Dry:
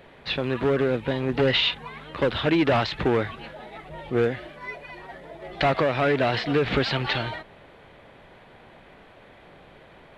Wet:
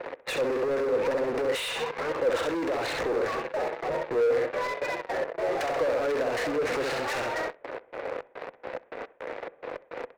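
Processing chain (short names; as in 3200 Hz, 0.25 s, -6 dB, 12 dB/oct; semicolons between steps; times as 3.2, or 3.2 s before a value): Wiener smoothing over 9 samples; step gate "x.xx.x.x." 106 bpm -12 dB; feedback echo 66 ms, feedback 27%, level -8 dB; in parallel at -10 dB: fuzz box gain 44 dB, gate -48 dBFS; on the sum: compressor 2.5:1, threshold -23 dBFS, peak gain reduction 7 dB; three-band isolator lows -17 dB, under 250 Hz, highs -21 dB, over 3600 Hz; hard clip -28.5 dBFS, distortion -8 dB; thirty-one-band EQ 200 Hz -8 dB, 500 Hz +11 dB, 3150 Hz -6 dB; gate with hold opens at -45 dBFS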